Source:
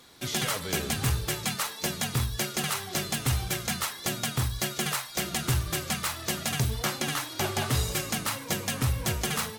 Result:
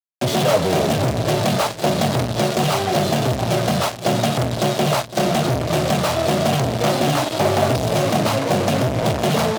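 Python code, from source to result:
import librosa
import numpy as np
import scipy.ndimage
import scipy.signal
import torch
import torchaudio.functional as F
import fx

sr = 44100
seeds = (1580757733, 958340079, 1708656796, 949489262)

p1 = scipy.signal.sosfilt(scipy.signal.butter(2, 2800.0, 'lowpass', fs=sr, output='sos'), x)
p2 = fx.peak_eq(p1, sr, hz=1800.0, db=-14.0, octaves=1.5)
p3 = fx.fuzz(p2, sr, gain_db=49.0, gate_db=-45.0)
p4 = scipy.signal.sosfilt(scipy.signal.butter(4, 100.0, 'highpass', fs=sr, output='sos'), p3)
p5 = fx.peak_eq(p4, sr, hz=640.0, db=11.5, octaves=0.43)
p6 = p5 + fx.echo_single(p5, sr, ms=508, db=-14.0, dry=0)
y = p6 * 10.0 ** (-4.0 / 20.0)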